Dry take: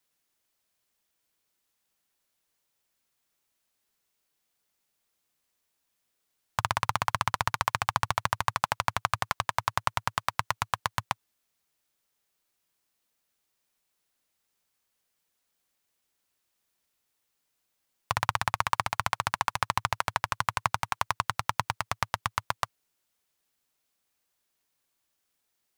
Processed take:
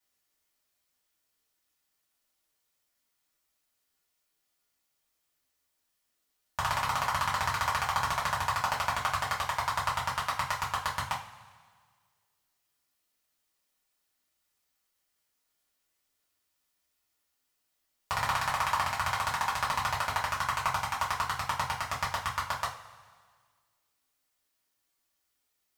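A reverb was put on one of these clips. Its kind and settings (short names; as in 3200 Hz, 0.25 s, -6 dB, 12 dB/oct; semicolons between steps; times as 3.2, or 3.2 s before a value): two-slope reverb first 0.3 s, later 1.7 s, from -18 dB, DRR -6.5 dB; gain -8 dB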